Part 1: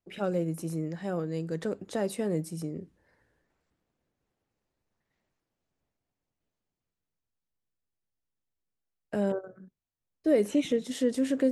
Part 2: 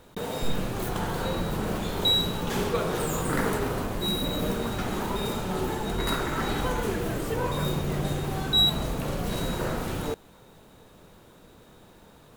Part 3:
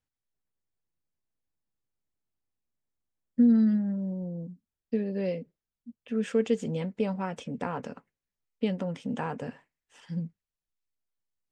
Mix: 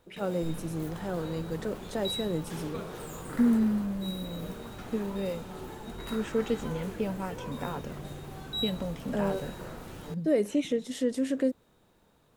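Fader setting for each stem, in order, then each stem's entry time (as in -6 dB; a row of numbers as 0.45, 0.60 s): -1.5, -12.5, -3.0 dB; 0.00, 0.00, 0.00 s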